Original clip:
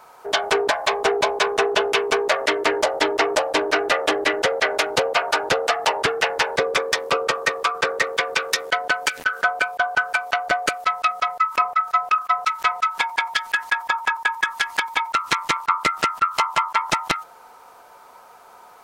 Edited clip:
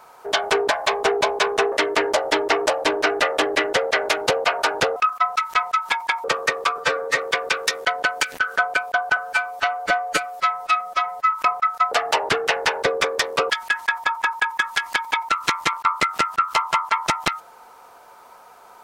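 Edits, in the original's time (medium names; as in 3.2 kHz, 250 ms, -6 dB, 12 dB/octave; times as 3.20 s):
1.72–2.41 s: delete
5.65–7.23 s: swap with 12.05–13.33 s
7.77–8.04 s: stretch 1.5×
10.02–11.46 s: stretch 1.5×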